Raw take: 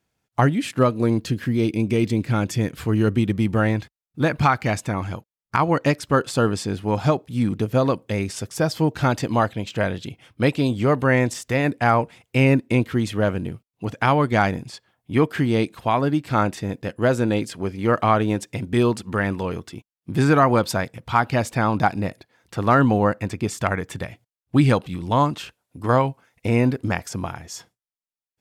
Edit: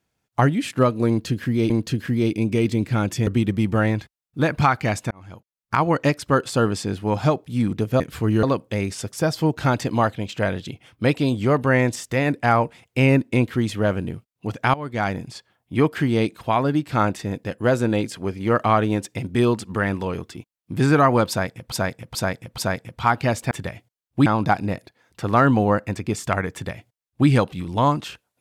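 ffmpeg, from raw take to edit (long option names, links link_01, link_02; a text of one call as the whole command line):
ffmpeg -i in.wav -filter_complex "[0:a]asplit=12[link_01][link_02][link_03][link_04][link_05][link_06][link_07][link_08][link_09][link_10][link_11][link_12];[link_01]atrim=end=1.702[link_13];[link_02]atrim=start=1.078:end=2.652[link_14];[link_03]atrim=start=3.078:end=4.92,asetpts=PTS-STARTPTS,afade=type=out:start_time=1.838:duration=0.004:curve=hsin[link_15];[link_04]atrim=start=4.92:end=7.812,asetpts=PTS-STARTPTS,afade=type=in:duration=0.66[link_16];[link_05]atrim=start=2.648:end=3.082[link_17];[link_06]atrim=start=7.808:end=14.12,asetpts=PTS-STARTPTS,afade=type=out:start_time=6.308:duration=0.004:curve=hsin:silence=0.11885[link_18];[link_07]atrim=start=14.12:end=21.102,asetpts=PTS-STARTPTS,afade=type=in:duration=0.55:silence=0.11885[link_19];[link_08]atrim=start=20.668:end=21.102[link_20];[link_09]atrim=start=20.668:end=21.102[link_21];[link_10]atrim=start=20.668:end=21.602[link_22];[link_11]atrim=start=23.868:end=24.622[link_23];[link_12]atrim=start=21.598[link_24];[link_13][link_14]acrossfade=duration=0.004:curve1=hsin:curve2=hsin[link_25];[link_15][link_16]concat=n=2:v=0:a=1[link_26];[link_25][link_26]acrossfade=duration=0.004:curve1=hsin:curve2=hsin[link_27];[link_27][link_17]acrossfade=duration=0.004:curve1=hsin:curve2=hsin[link_28];[link_18][link_19]concat=n=2:v=0:a=1[link_29];[link_28][link_29]acrossfade=duration=0.004:curve1=hsin:curve2=hsin[link_30];[link_30][link_20]acrossfade=duration=0.004:curve1=hsin:curve2=hsin[link_31];[link_31][link_21]acrossfade=duration=0.004:curve1=hsin:curve2=hsin[link_32];[link_32][link_22]acrossfade=duration=0.004:curve1=hsin:curve2=hsin[link_33];[link_33][link_23]acrossfade=duration=0.004:curve1=hsin:curve2=hsin[link_34];[link_34][link_24]acrossfade=duration=0.004:curve1=hsin:curve2=hsin" out.wav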